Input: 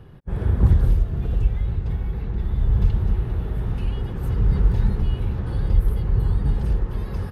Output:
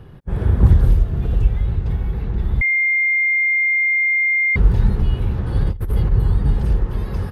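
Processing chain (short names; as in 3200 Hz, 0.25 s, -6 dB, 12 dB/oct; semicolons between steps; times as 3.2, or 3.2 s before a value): 2.61–4.56 bleep 2110 Hz -18 dBFS; 5.55–6.12 negative-ratio compressor -21 dBFS, ratio -0.5; gain +4 dB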